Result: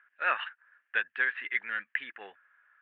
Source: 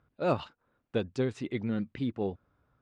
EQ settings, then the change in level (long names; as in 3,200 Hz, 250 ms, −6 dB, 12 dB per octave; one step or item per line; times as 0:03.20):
high-pass with resonance 1,700 Hz, resonance Q 9.7
Butterworth low-pass 3,100 Hz 48 dB per octave
+5.5 dB